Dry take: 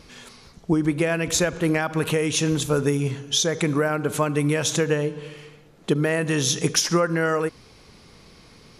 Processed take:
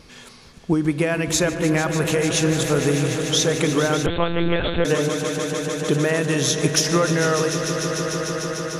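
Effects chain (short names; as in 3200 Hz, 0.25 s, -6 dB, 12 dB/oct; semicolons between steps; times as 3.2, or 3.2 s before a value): swelling echo 0.149 s, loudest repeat 5, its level -12 dB; 4.06–4.85 monotone LPC vocoder at 8 kHz 170 Hz; gain +1 dB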